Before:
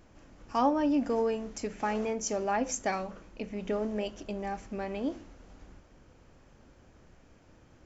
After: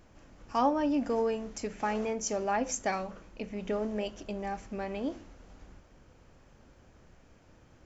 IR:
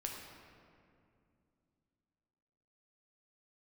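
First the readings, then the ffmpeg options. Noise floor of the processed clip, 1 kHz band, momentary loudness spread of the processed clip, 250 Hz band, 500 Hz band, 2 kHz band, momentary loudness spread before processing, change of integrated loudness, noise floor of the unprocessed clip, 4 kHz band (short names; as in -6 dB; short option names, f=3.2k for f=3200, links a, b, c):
-60 dBFS, 0.0 dB, 10 LU, -1.5 dB, -0.5 dB, 0.0 dB, 11 LU, -0.5 dB, -60 dBFS, 0.0 dB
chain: -af "equalizer=f=300:t=o:w=0.77:g=-2"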